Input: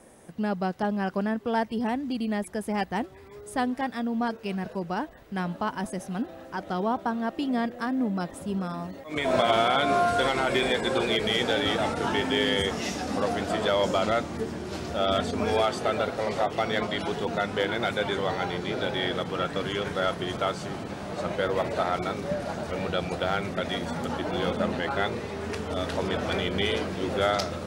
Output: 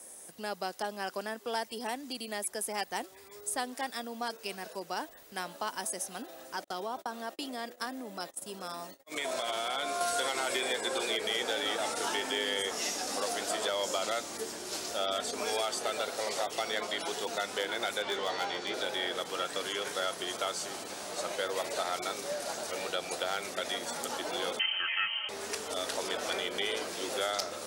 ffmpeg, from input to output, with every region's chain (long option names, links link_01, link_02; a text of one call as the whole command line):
ffmpeg -i in.wav -filter_complex "[0:a]asettb=1/sr,asplit=3[link_01][link_02][link_03];[link_01]atrim=end=6.644[link_04];[link_02]atrim=start=6.64:end=10.01,asetpts=PTS-STARTPTS,afade=type=in:duration=0.004:curve=qsin,afade=type=out:start_time=3.366:duration=0.004:curve=qsin,agate=range=-39dB:threshold=-40dB:ratio=16:release=100:detection=peak,acompressor=threshold=-25dB:ratio=6:attack=3.2:release=140:knee=1:detection=peak[link_05];[link_03]atrim=start=10.006[link_06];[link_04][link_05]acrossfade=duration=0.004:curve1=hsin:curve2=qsin[link_07];[link_07][link_06]acrossfade=duration=0.004:curve1=qsin:curve2=hsin,asettb=1/sr,asplit=3[link_08][link_09][link_10];[link_08]atrim=end=18.024[link_11];[link_09]atrim=start=18.02:end=18.74,asetpts=PTS-STARTPTS,afade=type=in:duration=0.004:curve=qsin,afade=type=out:start_time=0.716:duration=0.004:curve=qsin,lowpass=4900,volume=19.5dB,asoftclip=hard,volume=-19.5dB,asplit=2[link_12][link_13];[link_13]adelay=15,volume=-5dB[link_14];[link_12][link_14]amix=inputs=2:normalize=0,atrim=end_sample=31752[link_15];[link_10]atrim=start=18.736[link_16];[link_11][link_15]acrossfade=duration=0.004:curve1=hsin:curve2=qsin[link_17];[link_17][link_16]acrossfade=duration=0.004:curve1=qsin:curve2=hsin,asettb=1/sr,asplit=3[link_18][link_19][link_20];[link_18]atrim=end=24.594[link_21];[link_19]atrim=start=24.59:end=25.29,asetpts=PTS-STARTPTS,afade=type=in:duration=0.004:curve=qsin,afade=type=out:start_time=0.696:duration=0.004:curve=qsin,bandreject=frequency=520:width=6.3,aecho=1:1:4.1:0.78,atrim=end_sample=30870,lowpass=frequency=2800:width_type=q:width=0.5098,lowpass=frequency=2800:width_type=q:width=0.6013,lowpass=frequency=2800:width_type=q:width=0.9,lowpass=frequency=2800:width_type=q:width=2.563,afreqshift=-3300[link_22];[link_20]atrim=start=25.286[link_23];[link_21][link_22]acrossfade=duration=0.004:curve1=hsin:curve2=qsin[link_24];[link_24][link_23]acrossfade=duration=0.004:curve1=qsin:curve2=hsin,highshelf=frequency=4300:gain=9.5,acrossover=split=250|2400[link_25][link_26][link_27];[link_25]acompressor=threshold=-44dB:ratio=4[link_28];[link_26]acompressor=threshold=-25dB:ratio=4[link_29];[link_27]acompressor=threshold=-36dB:ratio=4[link_30];[link_28][link_29][link_30]amix=inputs=3:normalize=0,bass=frequency=250:gain=-13,treble=frequency=4000:gain=9,volume=-4.5dB" out.wav